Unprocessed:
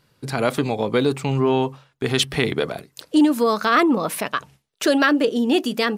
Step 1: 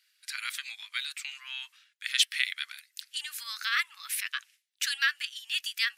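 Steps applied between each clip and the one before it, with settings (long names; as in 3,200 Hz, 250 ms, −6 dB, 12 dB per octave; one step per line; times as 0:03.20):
Butterworth high-pass 1,700 Hz 36 dB per octave
level −2.5 dB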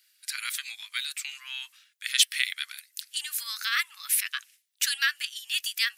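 high-shelf EQ 6,600 Hz +11.5 dB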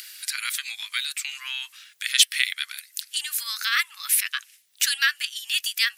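upward compression, threshold −30 dBFS
level +4 dB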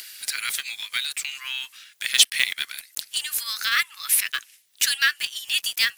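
one scale factor per block 5 bits
level +1 dB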